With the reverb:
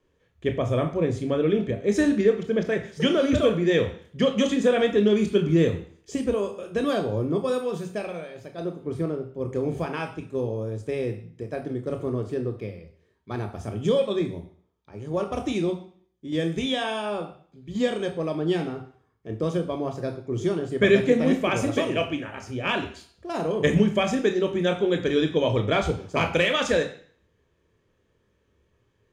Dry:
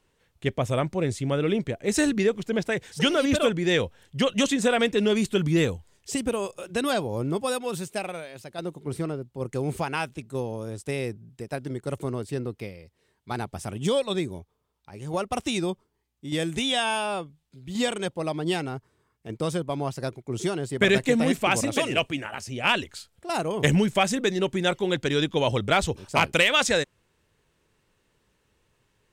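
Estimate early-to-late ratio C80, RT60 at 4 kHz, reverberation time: 14.0 dB, 0.50 s, 0.50 s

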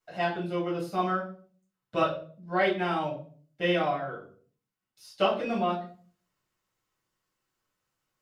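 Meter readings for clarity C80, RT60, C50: 12.5 dB, 0.45 s, 8.5 dB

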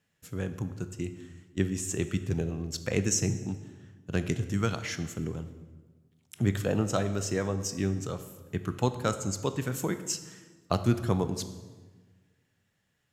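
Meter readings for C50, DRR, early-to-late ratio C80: 12.0 dB, 10.0 dB, 13.5 dB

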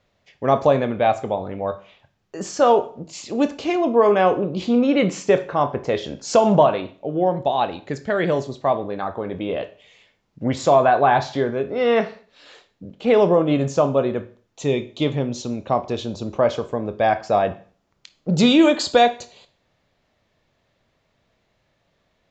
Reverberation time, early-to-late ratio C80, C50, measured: 0.45 s, 20.5 dB, 15.5 dB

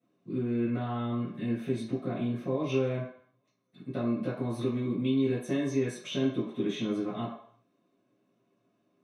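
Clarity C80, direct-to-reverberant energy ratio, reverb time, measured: 7.0 dB, −13.0 dB, 0.60 s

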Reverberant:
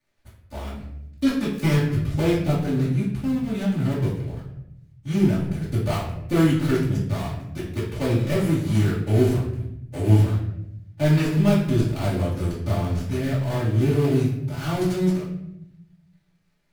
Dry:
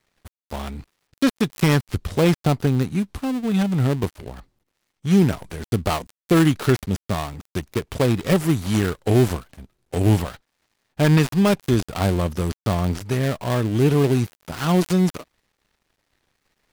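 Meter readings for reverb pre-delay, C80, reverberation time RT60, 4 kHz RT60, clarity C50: 3 ms, 7.5 dB, 0.80 s, 0.55 s, 3.5 dB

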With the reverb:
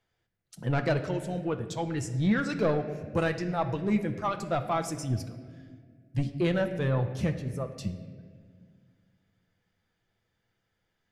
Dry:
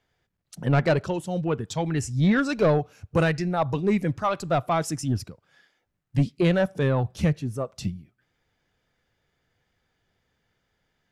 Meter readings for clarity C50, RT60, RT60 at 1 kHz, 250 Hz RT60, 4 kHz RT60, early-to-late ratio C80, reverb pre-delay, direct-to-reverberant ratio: 10.0 dB, 1.8 s, 1.5 s, 2.6 s, 1.1 s, 11.5 dB, 6 ms, 6.0 dB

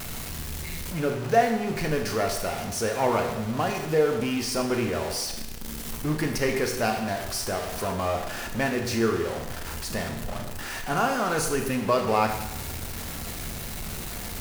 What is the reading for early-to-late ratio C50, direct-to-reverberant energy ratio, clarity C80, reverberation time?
6.5 dB, 3.5 dB, 8.5 dB, 0.95 s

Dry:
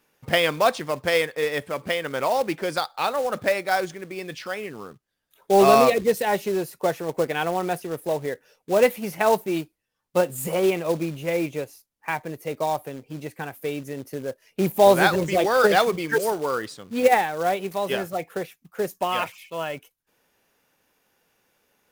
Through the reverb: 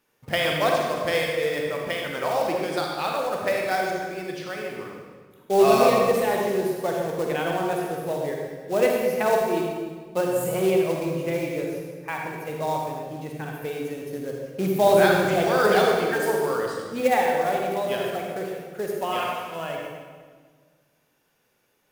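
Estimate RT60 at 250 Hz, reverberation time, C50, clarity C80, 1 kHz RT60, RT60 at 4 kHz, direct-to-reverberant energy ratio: 2.1 s, 1.7 s, 0.0 dB, 2.0 dB, 1.5 s, 1.3 s, −0.5 dB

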